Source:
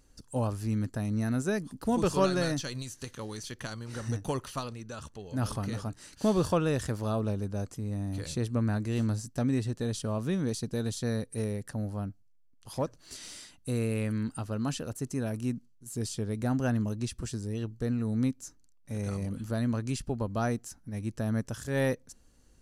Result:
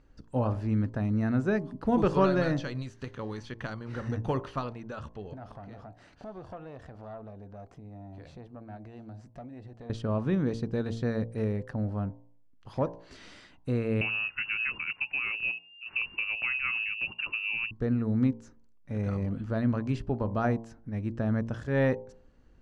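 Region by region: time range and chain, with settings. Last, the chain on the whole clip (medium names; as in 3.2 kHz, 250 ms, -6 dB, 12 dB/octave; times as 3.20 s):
5.33–9.90 s: peaking EQ 700 Hz +12.5 dB 0.39 oct + compression 3:1, threshold -45 dBFS + valve stage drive 36 dB, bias 0.65
14.01–17.71 s: frequency inversion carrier 2.8 kHz + three bands compressed up and down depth 100%
whole clip: low-pass 2.3 kHz 12 dB/octave; de-hum 57.13 Hz, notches 19; trim +3 dB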